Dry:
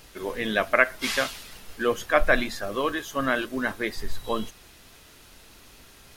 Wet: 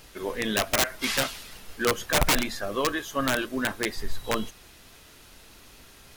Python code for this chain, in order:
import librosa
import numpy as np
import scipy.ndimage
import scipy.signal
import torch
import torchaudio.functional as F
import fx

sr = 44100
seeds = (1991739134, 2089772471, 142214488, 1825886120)

y = (np.mod(10.0 ** (15.0 / 20.0) * x + 1.0, 2.0) - 1.0) / 10.0 ** (15.0 / 20.0)